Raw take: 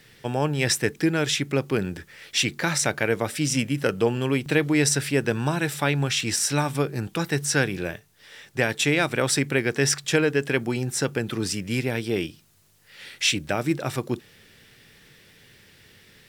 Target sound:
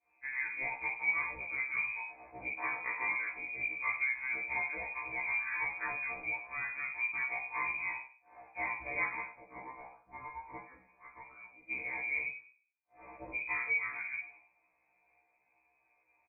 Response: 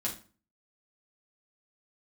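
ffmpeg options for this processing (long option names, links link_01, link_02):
-filter_complex "[0:a]agate=range=-33dB:threshold=-42dB:ratio=3:detection=peak,asettb=1/sr,asplit=3[link_01][link_02][link_03];[link_01]atrim=end=9.194[link_04];[link_02]atrim=start=9.19:end=11.71,asetpts=PTS-STARTPTS,afade=type=in:duration=0.004:curve=qsin,afade=type=out:start_time=2.516:duration=0.004:curve=qsin,aderivative[link_05];[link_03]atrim=start=11.706[link_06];[link_04][link_05]acrossfade=duration=0.004:curve1=hsin:curve2=qsin[link_07];[link_07][link_06]acrossfade=duration=0.004:curve1=qsin:curve2=hsin,acompressor=threshold=-34dB:ratio=2,aecho=1:1:86:0.141[link_08];[1:a]atrim=start_sample=2205[link_09];[link_08][link_09]afir=irnorm=-1:irlink=0,lowpass=frequency=2200:width_type=q:width=0.5098,lowpass=frequency=2200:width_type=q:width=0.6013,lowpass=frequency=2200:width_type=q:width=0.9,lowpass=frequency=2200:width_type=q:width=2.563,afreqshift=-2600,afftfilt=real='re*1.73*eq(mod(b,3),0)':imag='im*1.73*eq(mod(b,3),0)':win_size=2048:overlap=0.75,volume=-5dB"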